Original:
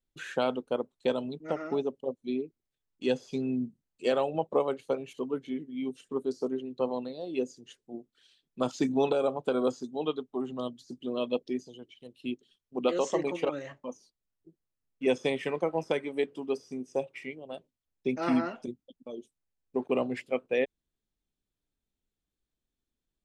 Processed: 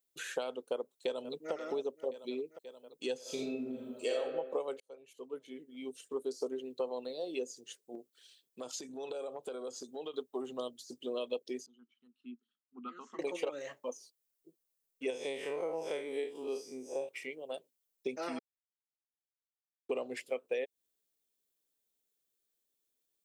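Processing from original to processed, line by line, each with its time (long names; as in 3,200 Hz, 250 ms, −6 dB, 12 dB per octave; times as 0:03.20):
0:00.59–0:01.52: delay throw 530 ms, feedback 70%, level −17 dB
0:03.21–0:04.16: thrown reverb, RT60 0.88 s, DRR −6 dB
0:04.80–0:06.40: fade in
0:07.95–0:10.14: downward compressor 16 to 1, threshold −36 dBFS
0:11.66–0:13.19: pair of resonant band-passes 550 Hz, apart 2.5 octaves
0:15.10–0:17.09: spectrum smeared in time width 98 ms
0:18.39–0:19.89: silence
whole clip: RIAA equalisation recording; downward compressor 6 to 1, threshold −35 dBFS; parametric band 470 Hz +8.5 dB 0.94 octaves; level −3.5 dB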